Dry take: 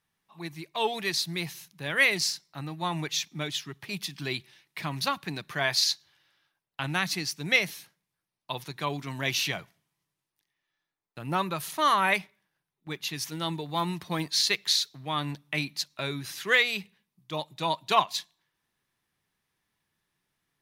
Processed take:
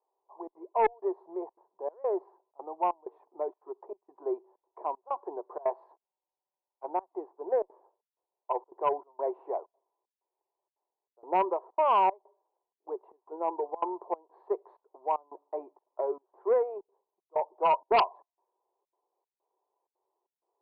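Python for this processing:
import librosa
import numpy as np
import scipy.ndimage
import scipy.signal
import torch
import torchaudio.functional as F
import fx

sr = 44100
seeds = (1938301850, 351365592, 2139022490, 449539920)

y = scipy.signal.sosfilt(scipy.signal.cheby1(4, 1.0, [370.0, 1000.0], 'bandpass', fs=sr, output='sos'), x)
y = fx.step_gate(y, sr, bpm=191, pattern='xxxxxx.xxxx..', floor_db=-24.0, edge_ms=4.5)
y = fx.cheby_harmonics(y, sr, harmonics=(5,), levels_db=(-7,), full_scale_db=-13.0)
y = fx.spec_freeze(y, sr, seeds[0], at_s=6.09, hold_s=0.74)
y = y * librosa.db_to_amplitude(-2.5)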